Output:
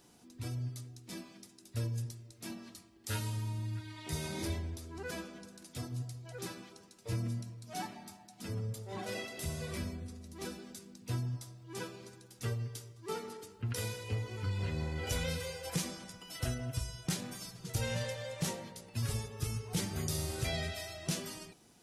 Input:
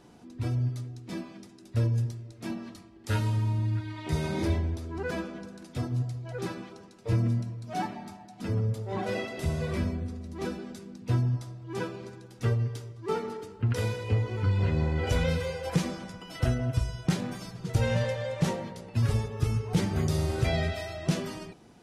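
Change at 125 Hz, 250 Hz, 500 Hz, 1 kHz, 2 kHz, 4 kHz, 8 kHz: -10.0 dB, -10.0 dB, -9.5 dB, -8.5 dB, -6.0 dB, -1.5 dB, +3.0 dB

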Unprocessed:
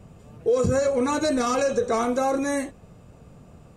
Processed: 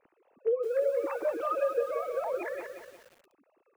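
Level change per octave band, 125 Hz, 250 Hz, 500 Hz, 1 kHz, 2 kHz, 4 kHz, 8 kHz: under -35 dB, -20.5 dB, -6.0 dB, -9.5 dB, -10.0 dB, under -20 dB, under -20 dB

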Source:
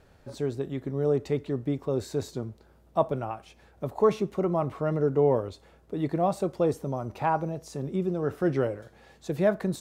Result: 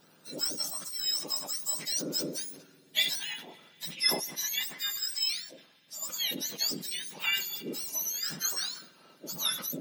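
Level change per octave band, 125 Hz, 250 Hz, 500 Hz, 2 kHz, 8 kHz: -21.0 dB, -14.0 dB, -19.5 dB, +6.0 dB, no reading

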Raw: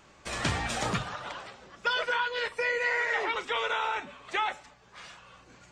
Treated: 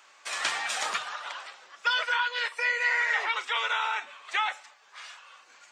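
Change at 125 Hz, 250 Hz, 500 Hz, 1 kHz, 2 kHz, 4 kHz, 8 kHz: under -30 dB, under -15 dB, -8.5 dB, +1.0 dB, +3.0 dB, +3.5 dB, +3.5 dB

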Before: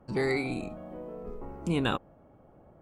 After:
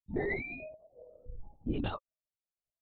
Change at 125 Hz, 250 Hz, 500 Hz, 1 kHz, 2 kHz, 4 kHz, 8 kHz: -6.5 dB, -7.0 dB, -7.5 dB, -8.5 dB, -4.5 dB, -12.0 dB, under -25 dB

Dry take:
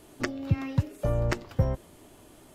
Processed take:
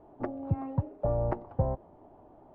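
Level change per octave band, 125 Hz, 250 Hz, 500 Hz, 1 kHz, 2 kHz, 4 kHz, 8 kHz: -4.5 dB, -3.5 dB, +0.5 dB, +2.0 dB, -16.0 dB, under -30 dB, under -30 dB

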